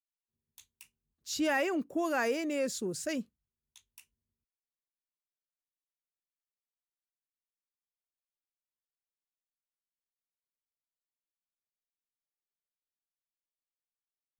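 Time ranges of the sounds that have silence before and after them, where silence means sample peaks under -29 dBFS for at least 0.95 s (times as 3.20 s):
1.30–3.20 s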